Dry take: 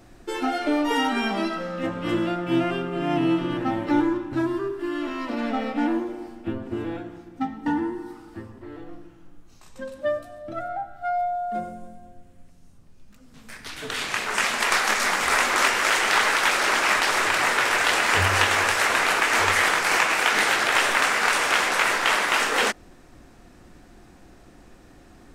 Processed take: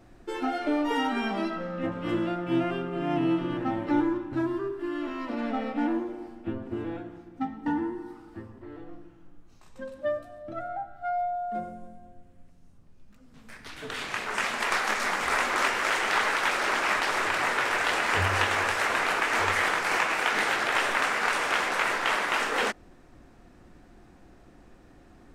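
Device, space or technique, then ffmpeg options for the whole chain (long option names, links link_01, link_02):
behind a face mask: -filter_complex "[0:a]asettb=1/sr,asplit=3[link_01][link_02][link_03];[link_01]atrim=end=1.504[link_04];[link_02]atrim=start=1.5:end=1.92,asetpts=PTS-STARTPTS,afade=type=in:duration=0.004:curve=qsin,afade=type=out:start_time=0.416:duration=0.004:curve=qsin,bass=frequency=250:gain=3,treble=frequency=4000:gain=-5[link_05];[link_03]atrim=start=1.916[link_06];[link_04][link_05]acrossfade=duration=0.004:curve1=hsin:curve2=qsin[link_07];[link_07][link_06]acrossfade=duration=0.004:curve1=qsin:curve2=hsin,highshelf=frequency=3400:gain=-7.5,volume=-3.5dB"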